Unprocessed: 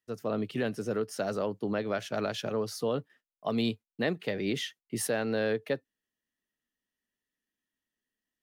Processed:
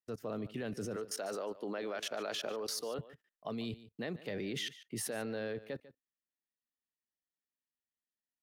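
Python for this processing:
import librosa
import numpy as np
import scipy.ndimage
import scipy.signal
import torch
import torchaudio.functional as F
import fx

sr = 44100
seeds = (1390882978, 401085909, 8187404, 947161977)

y = fx.highpass(x, sr, hz=370.0, slope=12, at=(0.96, 2.99))
y = fx.level_steps(y, sr, step_db=22)
y = y + 10.0 ** (-17.0 / 20.0) * np.pad(y, (int(146 * sr / 1000.0), 0))[:len(y)]
y = y * librosa.db_to_amplitude(5.5)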